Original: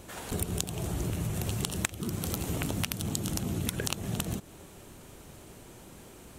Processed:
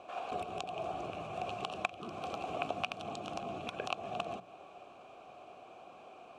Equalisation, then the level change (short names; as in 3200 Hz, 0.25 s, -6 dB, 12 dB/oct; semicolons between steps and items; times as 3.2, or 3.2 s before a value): vowel filter a; LPF 6300 Hz 12 dB/oct; notches 60/120/180 Hz; +11.5 dB